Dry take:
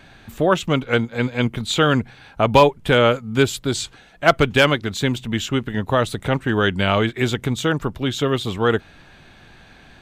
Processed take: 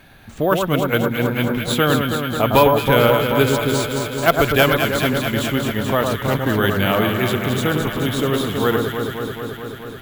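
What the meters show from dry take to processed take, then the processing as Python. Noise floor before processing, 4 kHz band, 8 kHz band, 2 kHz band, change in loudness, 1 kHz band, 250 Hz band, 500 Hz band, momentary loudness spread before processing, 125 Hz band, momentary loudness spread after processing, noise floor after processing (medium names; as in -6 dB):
-48 dBFS, +0.5 dB, +2.0 dB, +1.5 dB, +1.5 dB, +1.5 dB, +2.0 dB, +2.0 dB, 8 LU, +1.5 dB, 8 LU, -35 dBFS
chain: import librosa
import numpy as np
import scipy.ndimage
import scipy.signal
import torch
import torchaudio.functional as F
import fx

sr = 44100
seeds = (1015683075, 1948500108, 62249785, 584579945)

p1 = x + fx.echo_alternate(x, sr, ms=108, hz=1500.0, feedback_pct=87, wet_db=-4.0, dry=0)
p2 = np.repeat(p1[::3], 3)[:len(p1)]
y = p2 * librosa.db_to_amplitude(-1.0)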